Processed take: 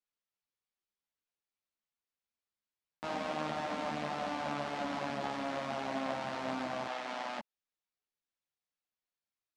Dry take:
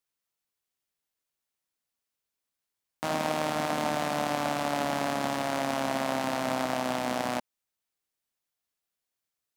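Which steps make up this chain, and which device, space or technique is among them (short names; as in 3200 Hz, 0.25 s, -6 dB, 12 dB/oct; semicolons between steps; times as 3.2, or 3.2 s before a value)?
6.86–7.39 weighting filter A; string-machine ensemble chorus (ensemble effect; LPF 4900 Hz 12 dB/oct); gain -4 dB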